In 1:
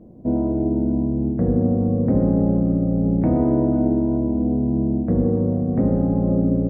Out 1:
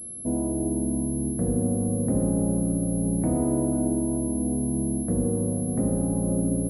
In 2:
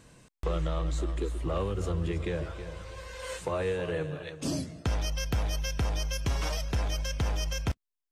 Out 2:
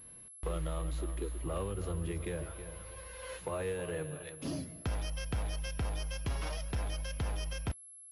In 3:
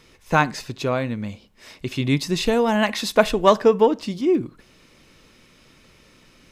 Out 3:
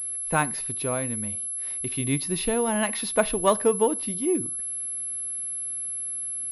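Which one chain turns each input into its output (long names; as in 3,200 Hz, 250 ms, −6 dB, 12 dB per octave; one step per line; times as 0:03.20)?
switching amplifier with a slow clock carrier 11,000 Hz
level −6 dB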